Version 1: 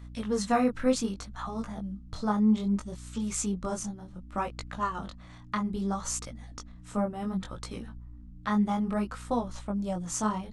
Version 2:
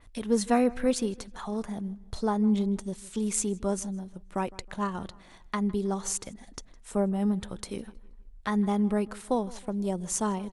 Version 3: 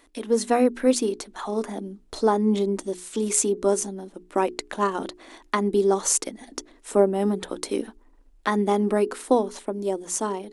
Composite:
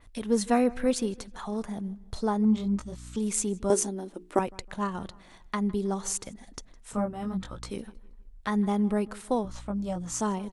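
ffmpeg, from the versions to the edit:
-filter_complex "[0:a]asplit=3[a][b][c];[1:a]asplit=5[d][e][f][g][h];[d]atrim=end=2.452[i];[a]atrim=start=2.448:end=3.162[j];[e]atrim=start=3.158:end=3.702[k];[2:a]atrim=start=3.698:end=4.392[l];[f]atrim=start=4.388:end=6.932[m];[b]atrim=start=6.928:end=7.702[n];[g]atrim=start=7.698:end=9.452[o];[c]atrim=start=9.448:end=10.212[p];[h]atrim=start=10.208[q];[i][j]acrossfade=d=0.004:c1=hsin:c2=hsin[r];[r][k]acrossfade=d=0.004:c1=hsin:c2=hsin[s];[s][l]acrossfade=d=0.004:c1=hsin:c2=hsin[t];[t][m]acrossfade=d=0.004:c1=hsin:c2=hsin[u];[u][n]acrossfade=d=0.004:c1=hsin:c2=hsin[v];[v][o]acrossfade=d=0.004:c1=hsin:c2=hsin[w];[w][p]acrossfade=d=0.004:c1=hsin:c2=hsin[x];[x][q]acrossfade=d=0.004:c1=hsin:c2=hsin"

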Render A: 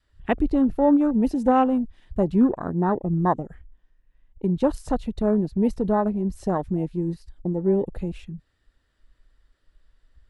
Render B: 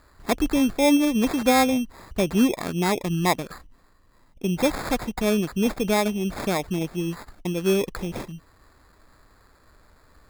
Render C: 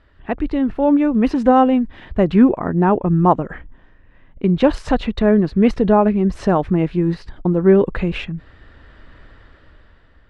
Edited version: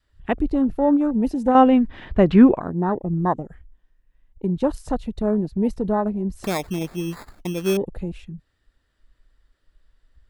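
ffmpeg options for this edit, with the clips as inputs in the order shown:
-filter_complex "[0:a]asplit=3[a][b][c];[a]atrim=end=1.552[d];[2:a]atrim=start=1.548:end=2.602[e];[b]atrim=start=2.598:end=6.442[f];[1:a]atrim=start=6.438:end=7.772[g];[c]atrim=start=7.768[h];[d][e]acrossfade=d=0.004:c1=hsin:c2=hsin[i];[i][f]acrossfade=d=0.004:c1=hsin:c2=hsin[j];[j][g]acrossfade=d=0.004:c1=hsin:c2=hsin[k];[k][h]acrossfade=d=0.004:c1=hsin:c2=hsin"

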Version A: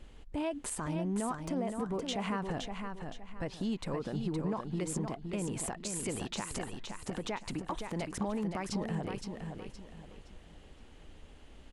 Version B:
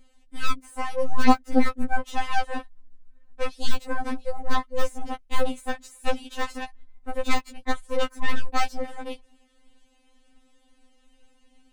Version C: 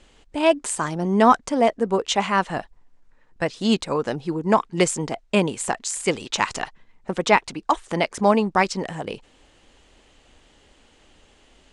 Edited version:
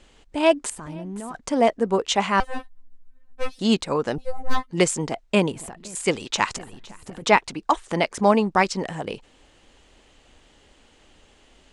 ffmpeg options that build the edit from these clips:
-filter_complex "[0:a]asplit=3[a][b][c];[1:a]asplit=2[d][e];[2:a]asplit=6[f][g][h][i][j][k];[f]atrim=end=0.702[l];[a]atrim=start=0.698:end=1.352[m];[g]atrim=start=1.348:end=2.402[n];[d]atrim=start=2.398:end=3.592[o];[h]atrim=start=3.588:end=4.182[p];[e]atrim=start=4.178:end=4.712[q];[i]atrim=start=4.708:end=5.522[r];[b]atrim=start=5.518:end=5.952[s];[j]atrim=start=5.948:end=6.572[t];[c]atrim=start=6.568:end=7.222[u];[k]atrim=start=7.218[v];[l][m]acrossfade=d=0.004:c1=hsin:c2=hsin[w];[w][n]acrossfade=d=0.004:c1=hsin:c2=hsin[x];[x][o]acrossfade=d=0.004:c1=hsin:c2=hsin[y];[y][p]acrossfade=d=0.004:c1=hsin:c2=hsin[z];[z][q]acrossfade=d=0.004:c1=hsin:c2=hsin[aa];[aa][r]acrossfade=d=0.004:c1=hsin:c2=hsin[ab];[ab][s]acrossfade=d=0.004:c1=hsin:c2=hsin[ac];[ac][t]acrossfade=d=0.004:c1=hsin:c2=hsin[ad];[ad][u]acrossfade=d=0.004:c1=hsin:c2=hsin[ae];[ae][v]acrossfade=d=0.004:c1=hsin:c2=hsin"

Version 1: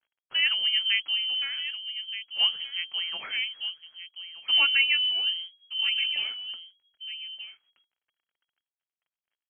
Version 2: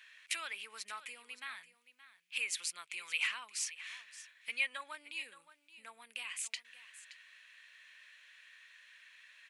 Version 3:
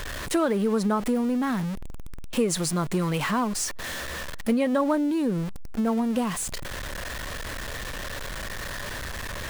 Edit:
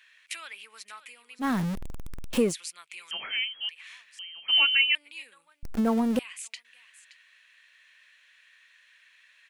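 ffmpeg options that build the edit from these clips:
-filter_complex "[2:a]asplit=2[a][b];[0:a]asplit=2[c][d];[1:a]asplit=5[e][f][g][h][i];[e]atrim=end=1.45[j];[a]atrim=start=1.39:end=2.54[k];[f]atrim=start=2.48:end=3.112[l];[c]atrim=start=3.108:end=3.692[m];[g]atrim=start=3.688:end=4.192[n];[d]atrim=start=4.188:end=4.952[o];[h]atrim=start=4.948:end=5.632[p];[b]atrim=start=5.628:end=6.192[q];[i]atrim=start=6.188[r];[j][k]acrossfade=d=0.06:c1=tri:c2=tri[s];[s][l]acrossfade=d=0.06:c1=tri:c2=tri[t];[t][m]acrossfade=d=0.004:c1=hsin:c2=hsin[u];[u][n]acrossfade=d=0.004:c1=hsin:c2=hsin[v];[v][o]acrossfade=d=0.004:c1=hsin:c2=hsin[w];[w][p]acrossfade=d=0.004:c1=hsin:c2=hsin[x];[x][q]acrossfade=d=0.004:c1=hsin:c2=hsin[y];[y][r]acrossfade=d=0.004:c1=hsin:c2=hsin"

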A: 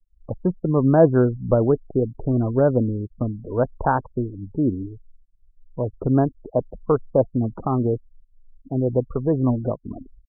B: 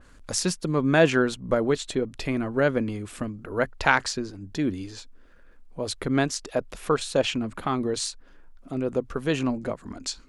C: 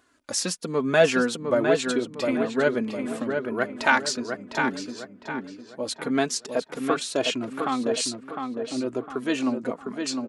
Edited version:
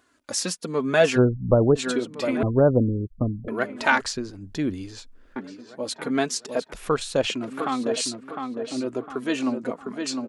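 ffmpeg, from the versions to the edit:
-filter_complex "[0:a]asplit=2[a][b];[1:a]asplit=2[c][d];[2:a]asplit=5[e][f][g][h][i];[e]atrim=end=1.19[j];[a]atrim=start=1.15:end=1.79[k];[f]atrim=start=1.75:end=2.432[l];[b]atrim=start=2.428:end=3.482[m];[g]atrim=start=3.478:end=4.012[n];[c]atrim=start=4.008:end=5.362[o];[h]atrim=start=5.358:end=6.732[p];[d]atrim=start=6.728:end=7.302[q];[i]atrim=start=7.298[r];[j][k]acrossfade=d=0.04:c1=tri:c2=tri[s];[s][l]acrossfade=d=0.04:c1=tri:c2=tri[t];[t][m]acrossfade=d=0.004:c1=hsin:c2=hsin[u];[u][n]acrossfade=d=0.004:c1=hsin:c2=hsin[v];[v][o]acrossfade=d=0.004:c1=hsin:c2=hsin[w];[w][p]acrossfade=d=0.004:c1=hsin:c2=hsin[x];[x][q]acrossfade=d=0.004:c1=hsin:c2=hsin[y];[y][r]acrossfade=d=0.004:c1=hsin:c2=hsin"

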